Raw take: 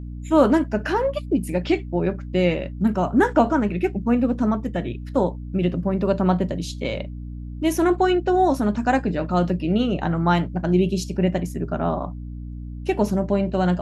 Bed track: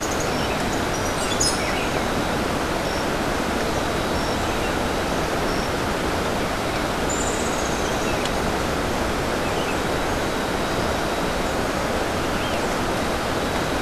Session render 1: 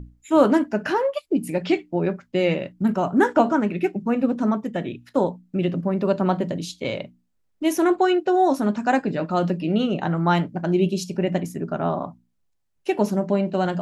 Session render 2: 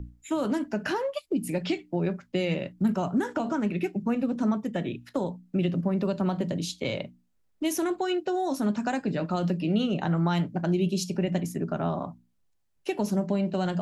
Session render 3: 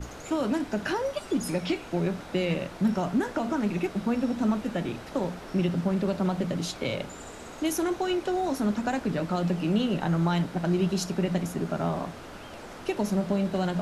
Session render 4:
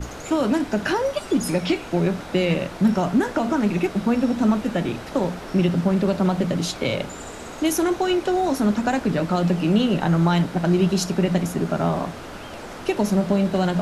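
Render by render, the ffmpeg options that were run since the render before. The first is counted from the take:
-af "bandreject=f=60:t=h:w=6,bandreject=f=120:t=h:w=6,bandreject=f=180:t=h:w=6,bandreject=f=240:t=h:w=6,bandreject=f=300:t=h:w=6"
-filter_complex "[0:a]alimiter=limit=-11.5dB:level=0:latency=1:release=111,acrossover=split=190|3000[a][b][c];[b]acompressor=threshold=-29dB:ratio=3[d];[a][d][c]amix=inputs=3:normalize=0"
-filter_complex "[1:a]volume=-19.5dB[a];[0:a][a]amix=inputs=2:normalize=0"
-af "volume=6.5dB"

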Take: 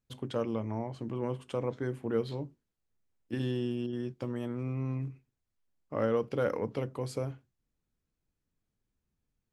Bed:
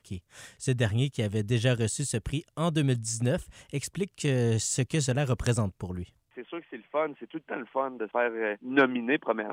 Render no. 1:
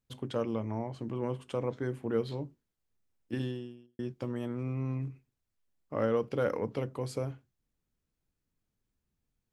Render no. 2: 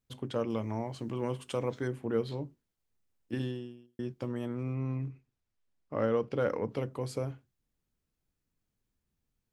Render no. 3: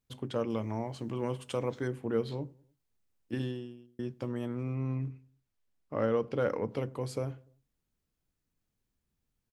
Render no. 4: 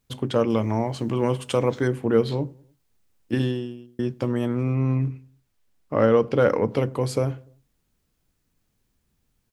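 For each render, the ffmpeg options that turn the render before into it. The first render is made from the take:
-filter_complex "[0:a]asplit=2[a][b];[a]atrim=end=3.99,asetpts=PTS-STARTPTS,afade=t=out:st=3.38:d=0.61:c=qua[c];[b]atrim=start=3.99,asetpts=PTS-STARTPTS,afade=t=in:d=0.004:c=hsin[d];[c][d]concat=n=2:v=0:a=1"
-filter_complex "[0:a]asettb=1/sr,asplit=3[a][b][c];[a]atrim=end=0.504[d];[b]atrim=start=0.5:end=1.88,asetpts=PTS-STARTPTS,afade=t=in:d=0.004:c=qsin,afade=t=out:st=1.376:d=0.004:c=qsin,highshelf=f=2.6k:g=9.5[e];[c]atrim=start=1.876[f];[d][e]acrossfade=d=0.004:c1=hsin:c2=qsin[g];[g][f]acrossfade=d=0.004:c1=qsin:c2=hsin,asettb=1/sr,asplit=3[h][i][j];[h]atrim=end=4.754[k];[i]atrim=start=4.75:end=6.69,asetpts=PTS-STARTPTS,afade=t=in:d=0.004:c=qsin,afade=t=out:st=1.936:d=0.004:c=qsin,adynamicsmooth=sensitivity=8:basefreq=8k[l];[j]atrim=start=6.686[m];[k][l]acrossfade=d=0.004:c1=hsin:c2=qsin[n];[n][m]acrossfade=d=0.004:c1=qsin:c2=hsin"
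-filter_complex "[0:a]asplit=2[a][b];[b]adelay=99,lowpass=f=1k:p=1,volume=-24dB,asplit=2[c][d];[d]adelay=99,lowpass=f=1k:p=1,volume=0.54,asplit=2[e][f];[f]adelay=99,lowpass=f=1k:p=1,volume=0.54[g];[a][c][e][g]amix=inputs=4:normalize=0"
-af "volume=11dB"

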